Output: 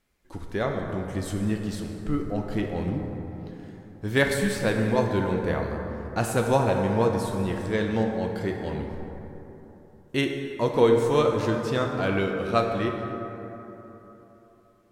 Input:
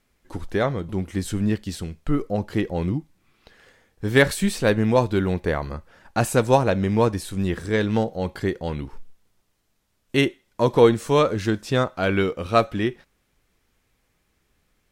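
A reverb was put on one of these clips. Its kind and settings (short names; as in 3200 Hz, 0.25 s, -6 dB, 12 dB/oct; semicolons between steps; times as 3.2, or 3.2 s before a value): plate-style reverb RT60 3.6 s, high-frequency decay 0.4×, DRR 2 dB; gain -5.5 dB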